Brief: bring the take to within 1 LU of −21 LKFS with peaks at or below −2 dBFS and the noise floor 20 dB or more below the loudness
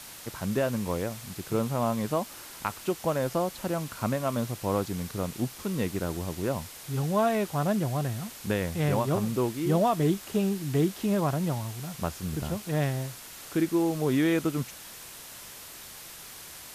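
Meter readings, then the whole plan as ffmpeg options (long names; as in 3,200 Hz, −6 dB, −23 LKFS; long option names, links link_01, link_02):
background noise floor −45 dBFS; target noise floor −49 dBFS; integrated loudness −29.0 LKFS; sample peak −15.0 dBFS; target loudness −21.0 LKFS
→ -af "afftdn=noise_reduction=6:noise_floor=-45"
-af "volume=8dB"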